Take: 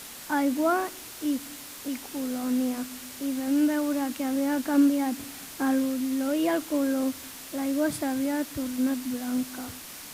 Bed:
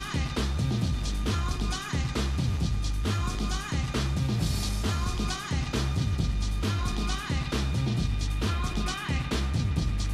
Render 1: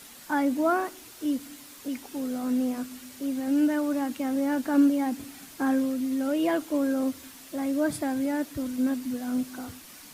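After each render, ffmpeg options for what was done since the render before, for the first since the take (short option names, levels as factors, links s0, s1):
-af "afftdn=nr=7:nf=-43"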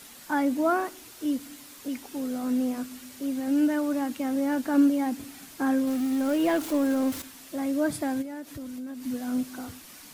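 -filter_complex "[0:a]asettb=1/sr,asplit=3[s0][s1][s2];[s0]atrim=end=5.874[s3];[s1]atrim=start=5.87:end=7.22,asetpts=PTS-STARTPTS,afade=t=in:d=0.004:c=qsin,afade=t=out:st=1.346:d=0.004:c=qsin,aeval=exprs='val(0)+0.5*0.0211*sgn(val(0))':c=same[s4];[s2]atrim=start=7.216[s5];[s3][s4]acrossfade=d=0.004:c1=hsin:c2=qsin[s6];[s6][s5]acrossfade=d=0.004:c1=qsin:c2=hsin,asplit=3[s7][s8][s9];[s7]afade=t=out:st=8.21:d=0.02[s10];[s8]acompressor=threshold=0.0178:ratio=6:attack=3.2:release=140:knee=1:detection=peak,afade=t=in:st=8.21:d=0.02,afade=t=out:st=9.04:d=0.02[s11];[s9]afade=t=in:st=9.04:d=0.02[s12];[s10][s11][s12]amix=inputs=3:normalize=0"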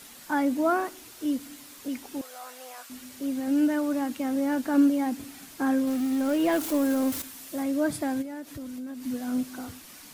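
-filter_complex "[0:a]asettb=1/sr,asplit=3[s0][s1][s2];[s0]atrim=end=2.214[s3];[s1]atrim=start=2.21:end=2.9,asetpts=PTS-STARTPTS,afade=t=in:d=0.004:c=qsin,afade=t=out:st=0.686:d=0.004:c=qsin,highpass=f=670:w=0.5412,highpass=f=670:w=1.3066[s4];[s2]atrim=start=2.896[s5];[s3][s4]acrossfade=d=0.004:c1=hsin:c2=qsin[s6];[s6][s5]acrossfade=d=0.004:c1=qsin:c2=hsin,asettb=1/sr,asplit=3[s7][s8][s9];[s7]atrim=end=6.524[s10];[s8]atrim=start=6.52:end=7.63,asetpts=PTS-STARTPTS,afade=t=in:d=0.004:c=qsin,afade=t=out:st=1.106:d=0.004:c=qsin,highshelf=f=7600:g=7[s11];[s9]atrim=start=7.626[s12];[s10][s11]acrossfade=d=0.004:c1=hsin:c2=qsin[s13];[s13][s12]acrossfade=d=0.004:c1=qsin:c2=hsin"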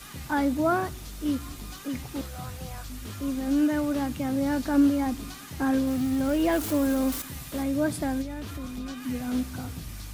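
-filter_complex "[1:a]volume=0.266[s0];[0:a][s0]amix=inputs=2:normalize=0"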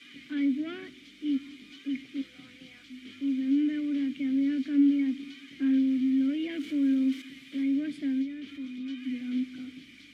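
-filter_complex "[0:a]asplit=2[s0][s1];[s1]highpass=f=720:p=1,volume=6.31,asoftclip=type=tanh:threshold=0.266[s2];[s0][s2]amix=inputs=2:normalize=0,lowpass=f=6000:p=1,volume=0.501,asplit=3[s3][s4][s5];[s3]bandpass=f=270:t=q:w=8,volume=1[s6];[s4]bandpass=f=2290:t=q:w=8,volume=0.501[s7];[s5]bandpass=f=3010:t=q:w=8,volume=0.355[s8];[s6][s7][s8]amix=inputs=3:normalize=0"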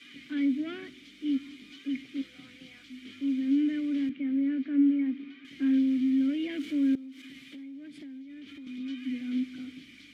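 -filter_complex "[0:a]asettb=1/sr,asplit=3[s0][s1][s2];[s0]atrim=end=4.094[s3];[s1]atrim=start=4.09:end=5.45,asetpts=PTS-STARTPTS,afade=t=in:d=0.004:c=qsin,afade=t=out:st=1.356:d=0.004:c=qsin,highpass=200,lowpass=2100[s4];[s2]atrim=start=5.446[s5];[s3][s4]acrossfade=d=0.004:c1=hsin:c2=qsin[s6];[s6][s5]acrossfade=d=0.004:c1=qsin:c2=hsin,asettb=1/sr,asplit=3[s7][s8][s9];[s7]atrim=end=6.954[s10];[s8]atrim=start=6.95:end=8.67,asetpts=PTS-STARTPTS,afade=t=in:d=0.004:c=qsin,afade=t=out:st=1.716:d=0.004:c=qsin,acompressor=threshold=0.00794:ratio=8:attack=3.2:release=140:knee=1:detection=peak[s11];[s9]atrim=start=8.666[s12];[s10][s11]acrossfade=d=0.004:c1=hsin:c2=qsin[s13];[s13][s12]acrossfade=d=0.004:c1=qsin:c2=hsin"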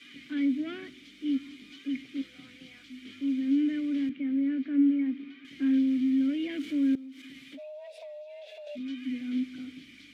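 -filter_complex "[0:a]asplit=3[s0][s1][s2];[s0]afade=t=out:st=7.57:d=0.02[s3];[s1]afreqshift=340,afade=t=in:st=7.57:d=0.02,afade=t=out:st=8.75:d=0.02[s4];[s2]afade=t=in:st=8.75:d=0.02[s5];[s3][s4][s5]amix=inputs=3:normalize=0"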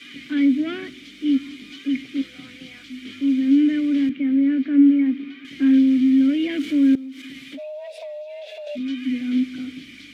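-af "volume=2.99"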